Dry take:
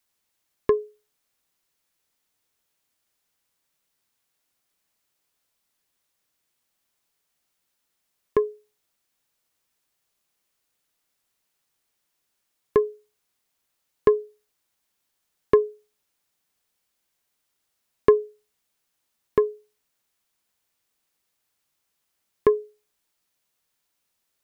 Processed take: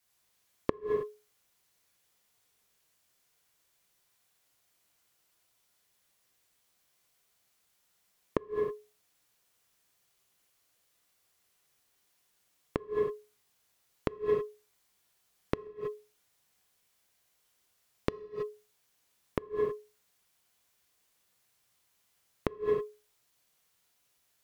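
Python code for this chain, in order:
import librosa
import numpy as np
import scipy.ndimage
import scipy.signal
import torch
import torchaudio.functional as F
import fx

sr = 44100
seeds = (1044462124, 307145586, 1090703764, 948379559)

y = fx.cheby_harmonics(x, sr, harmonics=(5, 7), levels_db=(-17, -23), full_scale_db=-2.5)
y = fx.rev_gated(y, sr, seeds[0], gate_ms=350, shape='falling', drr_db=-4.5)
y = fx.gate_flip(y, sr, shuts_db=-8.0, range_db=-29)
y = y * librosa.db_to_amplitude(-4.0)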